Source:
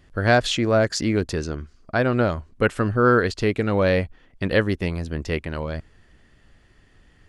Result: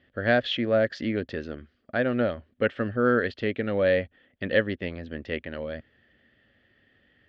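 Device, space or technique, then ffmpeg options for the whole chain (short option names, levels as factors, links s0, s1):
guitar cabinet: -af "highpass=97,equalizer=f=160:t=q:w=4:g=-5,equalizer=f=240:t=q:w=4:g=6,equalizer=f=550:t=q:w=4:g=8,equalizer=f=990:t=q:w=4:g=-9,equalizer=f=1800:t=q:w=4:g=8,equalizer=f=3200:t=q:w=4:g=7,lowpass=f=3900:w=0.5412,lowpass=f=3900:w=1.3066,volume=0.398"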